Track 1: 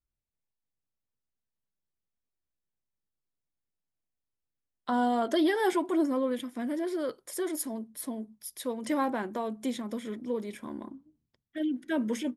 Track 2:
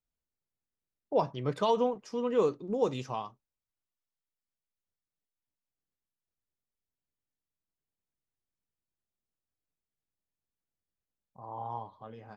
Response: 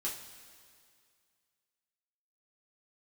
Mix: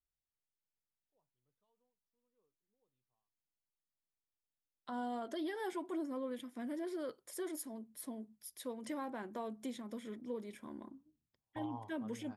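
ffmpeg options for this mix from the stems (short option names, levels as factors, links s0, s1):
-filter_complex "[0:a]volume=0.355,asplit=2[s0][s1];[1:a]equalizer=f=110:t=o:w=0.77:g=6,volume=0.501[s2];[s1]apad=whole_len=545162[s3];[s2][s3]sidechaingate=range=0.00316:threshold=0.00112:ratio=16:detection=peak[s4];[s0][s4]amix=inputs=2:normalize=0,alimiter=level_in=2.66:limit=0.0631:level=0:latency=1:release=381,volume=0.376"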